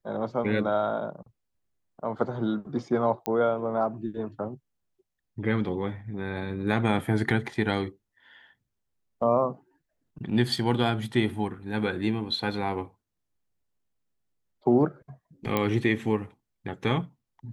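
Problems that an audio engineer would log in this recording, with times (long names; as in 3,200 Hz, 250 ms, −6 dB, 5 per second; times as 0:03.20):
0:03.26: click −13 dBFS
0:15.57: click −12 dBFS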